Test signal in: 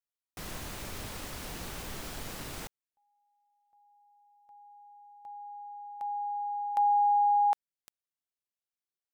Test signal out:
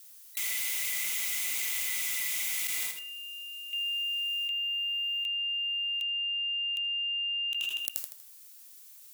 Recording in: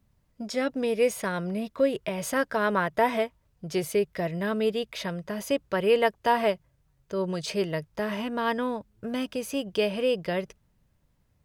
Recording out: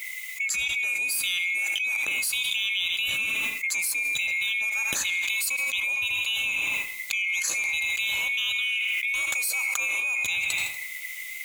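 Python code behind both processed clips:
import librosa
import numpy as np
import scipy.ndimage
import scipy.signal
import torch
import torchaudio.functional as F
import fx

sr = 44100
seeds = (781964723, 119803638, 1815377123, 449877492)

y = fx.band_swap(x, sr, width_hz=2000)
y = scipy.signal.sosfilt(scipy.signal.butter(2, 41.0, 'highpass', fs=sr, output='sos'), y)
y = F.preemphasis(torch.from_numpy(y), 0.9).numpy()
y = fx.echo_feedback(y, sr, ms=80, feedback_pct=43, wet_db=-17.5)
y = fx.rev_plate(y, sr, seeds[0], rt60_s=0.65, hf_ratio=0.6, predelay_ms=85, drr_db=18.5)
y = fx.env_flatten(y, sr, amount_pct=100)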